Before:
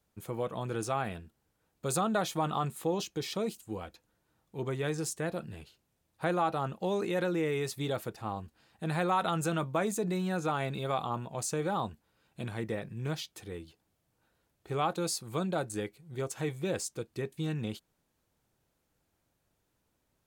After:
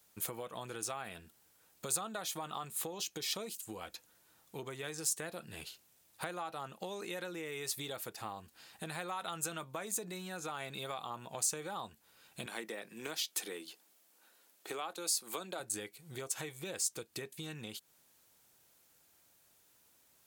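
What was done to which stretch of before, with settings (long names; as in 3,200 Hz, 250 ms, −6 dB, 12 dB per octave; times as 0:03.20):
0:12.46–0:15.60: high-pass filter 220 Hz 24 dB per octave
whole clip: downward compressor 12 to 1, threshold −42 dBFS; spectral tilt +3 dB per octave; level +5.5 dB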